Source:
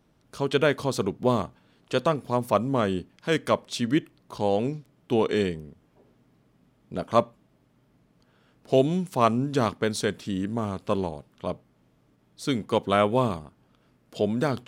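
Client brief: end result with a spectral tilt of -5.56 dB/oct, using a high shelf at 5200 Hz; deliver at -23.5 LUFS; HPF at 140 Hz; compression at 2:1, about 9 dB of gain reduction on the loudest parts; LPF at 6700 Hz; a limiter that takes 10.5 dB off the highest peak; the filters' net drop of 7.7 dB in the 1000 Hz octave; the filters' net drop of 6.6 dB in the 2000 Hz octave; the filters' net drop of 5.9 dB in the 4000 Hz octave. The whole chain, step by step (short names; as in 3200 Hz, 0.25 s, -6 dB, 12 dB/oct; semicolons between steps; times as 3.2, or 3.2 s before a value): HPF 140 Hz; LPF 6700 Hz; bell 1000 Hz -9 dB; bell 2000 Hz -4.5 dB; bell 4000 Hz -8 dB; high shelf 5200 Hz +7.5 dB; compressor 2:1, threshold -35 dBFS; gain +17 dB; limiter -11.5 dBFS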